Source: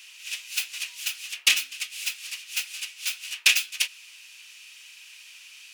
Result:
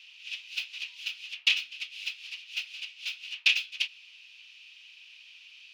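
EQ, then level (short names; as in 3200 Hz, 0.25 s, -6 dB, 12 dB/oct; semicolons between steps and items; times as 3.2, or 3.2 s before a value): air absorption 300 m; resonant low shelf 470 Hz -11.5 dB, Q 1.5; band shelf 860 Hz -15 dB 2.7 oct; +4.0 dB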